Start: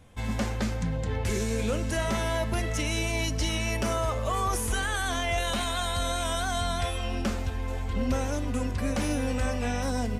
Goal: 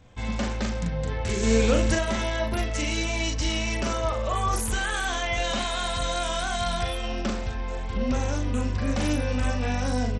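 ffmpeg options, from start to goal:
-filter_complex "[0:a]asettb=1/sr,asplit=3[a][b][c];[a]atrim=end=1.434[d];[b]atrim=start=1.43:end=1.95,asetpts=PTS-STARTPTS,afade=t=in:d=0.004:c=qsin,afade=t=out:st=0.516:d=0.004:c=qsin,acontrast=51[e];[c]atrim=start=1.946[f];[d][e]acrossfade=d=0.004:c1=hsin:c2=qsin[g];[g][f]acrossfade=d=0.004:c1=qsin:c2=hsin,asplit=2[h][i];[i]adelay=40,volume=-3.5dB[j];[h][j]amix=inputs=2:normalize=0" -ar 32000 -c:a sbc -b:a 64k

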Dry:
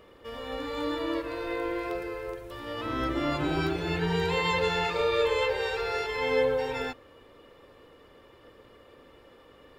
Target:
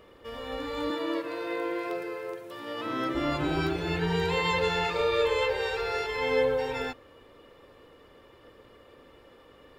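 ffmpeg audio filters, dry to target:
-filter_complex "[0:a]asettb=1/sr,asplit=3[a][b][c];[a]atrim=end=0.904[d];[b]atrim=start=0.9:end=3.15,asetpts=PTS-STARTPTS,afade=t=in:d=0.004:c=qsin,afade=t=out:st=2.246:d=0.004:c=qsin,highpass=f=140:w=0.5412,highpass=f=140:w=1.3066[e];[c]atrim=start=3.146[f];[d][e]acrossfade=d=0.004:c1=hsin:c2=qsin[g];[g][f]acrossfade=d=0.004:c1=qsin:c2=hsin"

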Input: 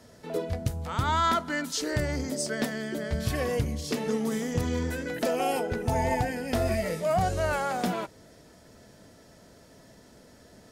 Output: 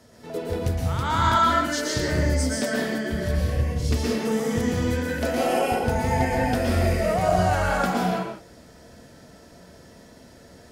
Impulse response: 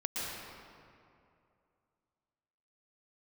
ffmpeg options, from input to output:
-filter_complex "[0:a]asettb=1/sr,asplit=3[a][b][c];[a]atrim=end=3.094[d];[b]atrim=start=3.09:end=3.8,asetpts=PTS-STARTPTS,afade=t=in:d=0.004:c=qsin,afade=t=out:st=0.706:d=0.004:c=qsin,acrossover=split=140[e][f];[f]acompressor=threshold=-35dB:ratio=10[g];[e][g]amix=inputs=2:normalize=0[h];[c]atrim=start=3.796[i];[d][h]acrossfade=d=0.004:c1=hsin:c2=qsin[j];[j][i]acrossfade=d=0.004:c1=qsin:c2=hsin[k];[1:a]atrim=start_sample=2205,afade=t=out:st=0.39:d=0.01,atrim=end_sample=17640[l];[k][l]afir=irnorm=-1:irlink=0,volume=1.5dB"

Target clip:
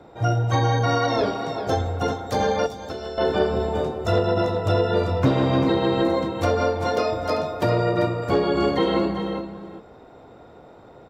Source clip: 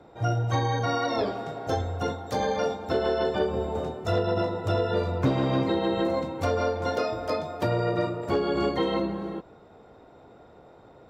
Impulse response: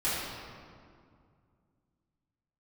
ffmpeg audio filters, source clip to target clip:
-filter_complex "[0:a]asplit=2[a][b];[b]aecho=0:1:393:0.335[c];[a][c]amix=inputs=2:normalize=0,asettb=1/sr,asplit=3[d][e][f];[d]atrim=end=2.664[g];[e]atrim=start=2.66:end=3.18,asetpts=PTS-STARTPTS,afade=t=in:d=0.004:c=qsin,afade=t=out:st=0.516:d=0.004:c=qsin,acrossover=split=120|4200[h][i][j];[h]acompressor=threshold=-47dB:ratio=4[k];[i]acompressor=threshold=-37dB:ratio=4[l];[j]acompressor=threshold=-49dB:ratio=4[m];[k][l][m]amix=inputs=3:normalize=0[n];[f]atrim=start=3.176[o];[g][n]acrossfade=d=0.004:c1=hsin:c2=qsin[p];[p][o]acrossfade=d=0.004:c1=qsin:c2=hsin,volume=4.5dB"

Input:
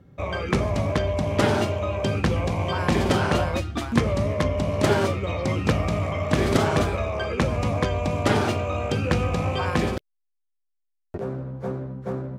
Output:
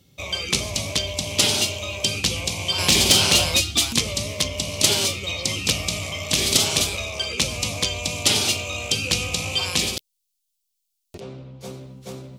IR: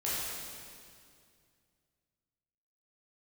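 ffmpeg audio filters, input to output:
-filter_complex "[0:a]aexciter=amount=10.4:drive=7.2:freq=2.5k,asettb=1/sr,asplit=3[a][b][c];[a]atrim=end=2.784[d];[b]atrim=start=2.78:end=3.93,asetpts=PTS-STARTPTS,afade=t=in:d=0.004:c=qsin,afade=t=out:st=1.146:d=0.004:c=qsin,acontrast=41[e];[c]atrim=start=3.926[f];[d][e]acrossfade=d=0.004:c1=hsin:c2=qsin[g];[g][f]acrossfade=d=0.004:c1=qsin:c2=hsin,asettb=1/sr,asplit=3[h][i][j];[h]atrim=end=11.204[k];[i]atrim=start=11.2:end=11.61,asetpts=PTS-STARTPTS,afade=t=in:d=0.004:c=qsin,afade=t=out:st=0.406:d=0.004:c=qsin,lowpass=3.7k[l];[j]atrim=start=11.606[m];[k][l]acrossfade=d=0.004:c1=hsin:c2=qsin[n];[n][m]acrossfade=d=0.004:c1=qsin:c2=hsin,volume=-7dB"

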